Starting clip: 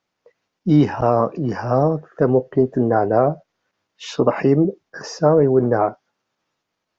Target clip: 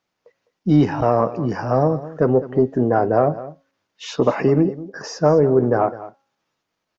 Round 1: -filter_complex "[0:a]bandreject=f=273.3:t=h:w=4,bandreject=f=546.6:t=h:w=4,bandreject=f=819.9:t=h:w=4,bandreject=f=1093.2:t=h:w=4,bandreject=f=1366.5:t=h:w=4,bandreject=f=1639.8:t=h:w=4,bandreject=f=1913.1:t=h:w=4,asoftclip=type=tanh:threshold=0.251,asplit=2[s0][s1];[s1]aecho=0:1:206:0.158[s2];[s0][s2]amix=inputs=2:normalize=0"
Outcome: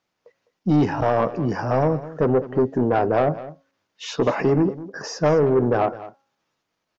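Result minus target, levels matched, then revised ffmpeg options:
saturation: distortion +16 dB
-filter_complex "[0:a]bandreject=f=273.3:t=h:w=4,bandreject=f=546.6:t=h:w=4,bandreject=f=819.9:t=h:w=4,bandreject=f=1093.2:t=h:w=4,bandreject=f=1366.5:t=h:w=4,bandreject=f=1639.8:t=h:w=4,bandreject=f=1913.1:t=h:w=4,asoftclip=type=tanh:threshold=0.891,asplit=2[s0][s1];[s1]aecho=0:1:206:0.158[s2];[s0][s2]amix=inputs=2:normalize=0"

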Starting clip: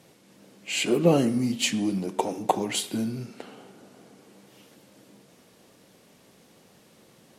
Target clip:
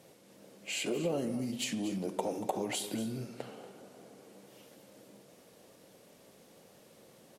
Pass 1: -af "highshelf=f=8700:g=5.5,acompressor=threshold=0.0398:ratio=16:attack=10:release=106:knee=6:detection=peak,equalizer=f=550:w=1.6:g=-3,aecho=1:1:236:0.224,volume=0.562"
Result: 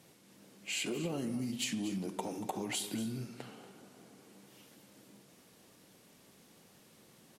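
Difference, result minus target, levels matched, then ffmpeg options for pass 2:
500 Hz band -4.5 dB
-af "highshelf=f=8700:g=5.5,acompressor=threshold=0.0398:ratio=16:attack=10:release=106:knee=6:detection=peak,equalizer=f=550:w=1.6:g=6.5,aecho=1:1:236:0.224,volume=0.562"

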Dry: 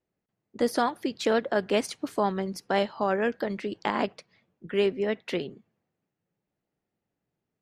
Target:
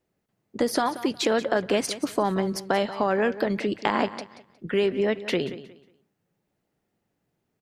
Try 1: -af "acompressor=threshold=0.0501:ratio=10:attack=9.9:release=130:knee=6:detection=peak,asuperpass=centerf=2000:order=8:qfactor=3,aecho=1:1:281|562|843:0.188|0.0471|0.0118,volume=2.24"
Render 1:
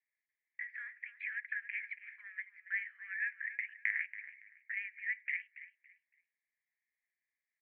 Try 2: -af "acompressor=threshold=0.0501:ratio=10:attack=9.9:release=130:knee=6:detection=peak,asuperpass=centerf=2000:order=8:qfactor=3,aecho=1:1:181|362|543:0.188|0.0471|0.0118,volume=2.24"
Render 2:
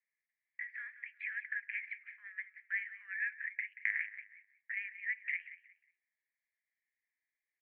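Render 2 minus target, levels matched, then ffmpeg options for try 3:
2 kHz band +10.5 dB
-af "acompressor=threshold=0.0501:ratio=10:attack=9.9:release=130:knee=6:detection=peak,aecho=1:1:181|362|543:0.188|0.0471|0.0118,volume=2.24"

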